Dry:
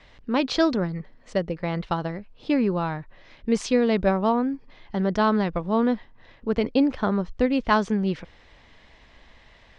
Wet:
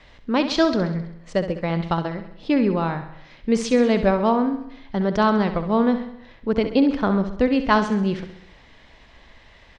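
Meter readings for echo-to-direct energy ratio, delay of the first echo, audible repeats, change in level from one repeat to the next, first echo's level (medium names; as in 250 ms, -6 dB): -9.0 dB, 66 ms, 5, -5.0 dB, -10.5 dB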